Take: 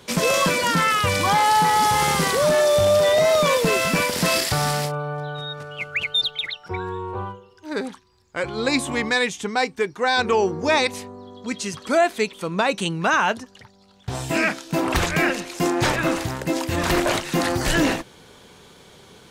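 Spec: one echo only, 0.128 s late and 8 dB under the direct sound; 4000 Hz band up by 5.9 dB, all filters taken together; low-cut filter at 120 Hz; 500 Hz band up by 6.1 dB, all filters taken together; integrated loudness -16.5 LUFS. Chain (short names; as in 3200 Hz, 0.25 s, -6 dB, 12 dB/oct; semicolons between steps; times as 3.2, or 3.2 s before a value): HPF 120 Hz; bell 500 Hz +7.5 dB; bell 4000 Hz +7 dB; echo 0.128 s -8 dB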